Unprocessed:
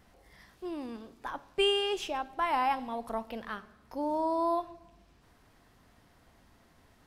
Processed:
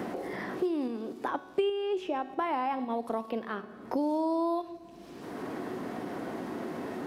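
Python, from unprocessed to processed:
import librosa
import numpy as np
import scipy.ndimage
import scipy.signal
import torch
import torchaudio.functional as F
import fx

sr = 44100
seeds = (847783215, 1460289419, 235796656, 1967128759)

p1 = fx.highpass(x, sr, hz=150.0, slope=6)
p2 = fx.peak_eq(p1, sr, hz=330.0, db=14.0, octaves=2.1)
p3 = fx.level_steps(p2, sr, step_db=15)
p4 = p2 + F.gain(torch.from_numpy(p3), 0.0).numpy()
p5 = fx.dynamic_eq(p4, sr, hz=3100.0, q=0.71, threshold_db=-39.0, ratio=4.0, max_db=4)
p6 = fx.comb_fb(p5, sr, f0_hz=370.0, decay_s=0.71, harmonics='all', damping=0.0, mix_pct=70)
y = fx.band_squash(p6, sr, depth_pct=100)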